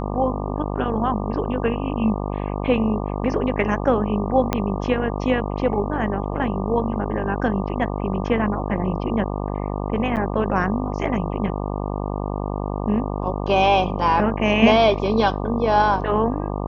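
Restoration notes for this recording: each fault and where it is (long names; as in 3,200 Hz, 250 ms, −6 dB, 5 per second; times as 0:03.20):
mains buzz 50 Hz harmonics 24 −26 dBFS
0:04.53: click −6 dBFS
0:10.16–0:10.17: drop-out 8.6 ms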